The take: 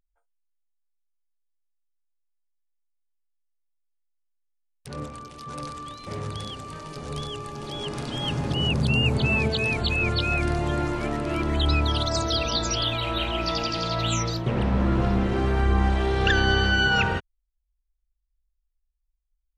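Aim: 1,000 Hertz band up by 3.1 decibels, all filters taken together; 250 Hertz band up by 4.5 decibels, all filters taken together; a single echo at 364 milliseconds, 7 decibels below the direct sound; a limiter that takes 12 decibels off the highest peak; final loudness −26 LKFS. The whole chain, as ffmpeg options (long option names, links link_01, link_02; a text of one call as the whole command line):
ffmpeg -i in.wav -af "equalizer=frequency=250:width_type=o:gain=6,equalizer=frequency=1000:width_type=o:gain=4,alimiter=limit=-19dB:level=0:latency=1,aecho=1:1:364:0.447,volume=1.5dB" out.wav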